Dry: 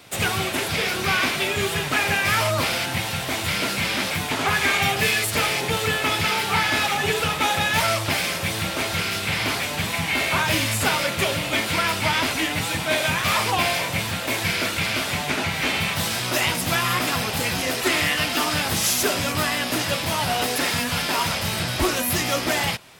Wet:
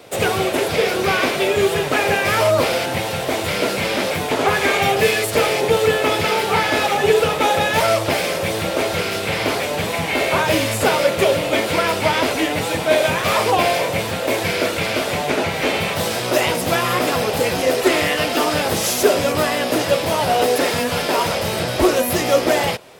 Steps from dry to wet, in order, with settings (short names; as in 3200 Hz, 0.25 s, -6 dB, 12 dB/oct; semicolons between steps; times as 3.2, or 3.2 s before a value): bell 490 Hz +13.5 dB 1.3 oct